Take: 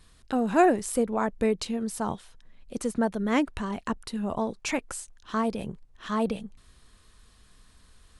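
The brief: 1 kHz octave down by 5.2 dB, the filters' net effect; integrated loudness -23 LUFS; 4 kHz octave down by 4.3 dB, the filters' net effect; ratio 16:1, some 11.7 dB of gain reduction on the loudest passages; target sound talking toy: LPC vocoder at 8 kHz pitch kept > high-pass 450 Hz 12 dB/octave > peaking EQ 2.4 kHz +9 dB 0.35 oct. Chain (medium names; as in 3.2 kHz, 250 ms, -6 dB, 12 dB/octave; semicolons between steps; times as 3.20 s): peaking EQ 1 kHz -7 dB; peaking EQ 4 kHz -7 dB; compression 16:1, threshold -28 dBFS; LPC vocoder at 8 kHz pitch kept; high-pass 450 Hz 12 dB/octave; peaking EQ 2.4 kHz +9 dB 0.35 oct; trim +18.5 dB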